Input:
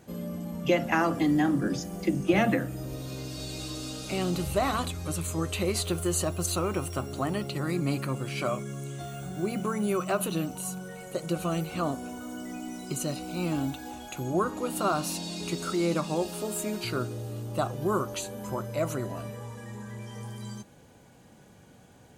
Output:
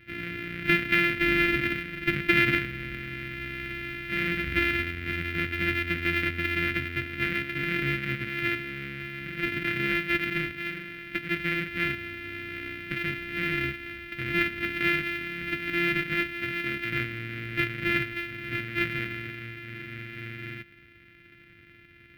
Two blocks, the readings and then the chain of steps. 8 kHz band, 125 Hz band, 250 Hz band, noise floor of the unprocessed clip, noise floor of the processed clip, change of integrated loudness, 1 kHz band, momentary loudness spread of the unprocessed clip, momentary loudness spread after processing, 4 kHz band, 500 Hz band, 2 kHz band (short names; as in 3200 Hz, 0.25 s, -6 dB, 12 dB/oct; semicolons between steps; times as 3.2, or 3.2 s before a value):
under -15 dB, -3.0 dB, -3.0 dB, -55 dBFS, -54 dBFS, +2.5 dB, -4.0 dB, 13 LU, 13 LU, +3.0 dB, -5.5 dB, +13.0 dB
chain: sample sorter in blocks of 128 samples; EQ curve 130 Hz 0 dB, 210 Hz -4 dB, 300 Hz 0 dB, 920 Hz -25 dB, 1400 Hz +3 dB, 2200 Hz +14 dB, 7100 Hz -23 dB, 14000 Hz -9 dB